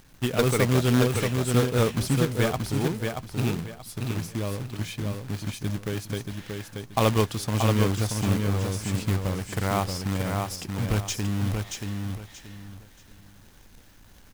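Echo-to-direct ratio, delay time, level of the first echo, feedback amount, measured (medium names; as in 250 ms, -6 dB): -4.0 dB, 630 ms, -4.5 dB, 27%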